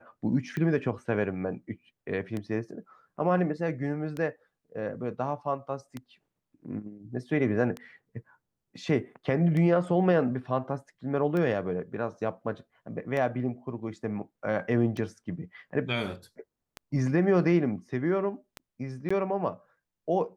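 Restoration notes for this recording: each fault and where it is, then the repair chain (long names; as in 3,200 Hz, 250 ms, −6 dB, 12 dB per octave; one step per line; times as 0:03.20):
scratch tick 33 1/3 rpm −21 dBFS
0:19.09–0:19.11: drop-out 15 ms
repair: click removal
repair the gap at 0:19.09, 15 ms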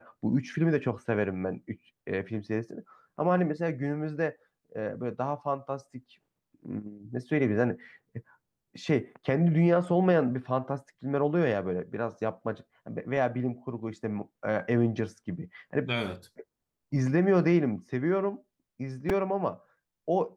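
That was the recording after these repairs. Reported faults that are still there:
none of them is left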